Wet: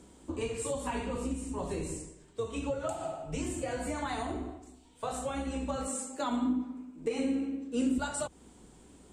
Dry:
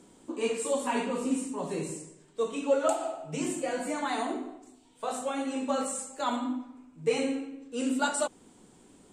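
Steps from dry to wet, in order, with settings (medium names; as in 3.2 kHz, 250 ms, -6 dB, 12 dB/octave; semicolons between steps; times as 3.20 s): octave divider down 2 oct, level -2 dB; compression 6:1, threshold -31 dBFS, peak gain reduction 11.5 dB; 5.87–7.98 s: resonant low shelf 170 Hz -12 dB, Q 3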